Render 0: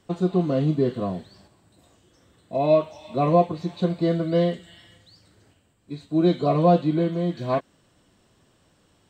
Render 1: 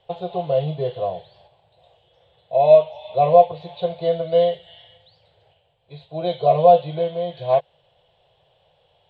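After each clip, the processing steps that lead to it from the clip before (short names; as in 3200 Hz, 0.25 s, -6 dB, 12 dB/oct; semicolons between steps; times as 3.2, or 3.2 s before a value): EQ curve 100 Hz 0 dB, 150 Hz +3 dB, 250 Hz -28 dB, 490 Hz +11 dB, 810 Hz +13 dB, 1200 Hz -4 dB, 1900 Hz 0 dB, 3400 Hz +12 dB, 5800 Hz -16 dB, 9100 Hz -19 dB; gain -4.5 dB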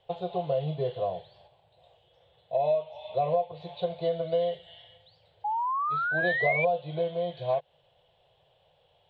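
compressor 6:1, threshold -19 dBFS, peak gain reduction 12.5 dB; painted sound rise, 5.44–6.65, 820–2400 Hz -24 dBFS; gain -4.5 dB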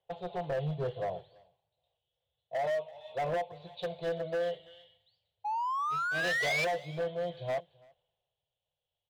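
overloaded stage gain 26.5 dB; echo 0.336 s -19.5 dB; three-band expander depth 70%; gain -3 dB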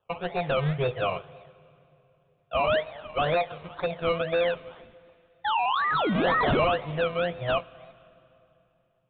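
decimation with a swept rate 20×, swing 60% 2 Hz; on a send at -20.5 dB: reverb RT60 3.0 s, pre-delay 17 ms; on the sum: downsampling 8000 Hz; gain +7.5 dB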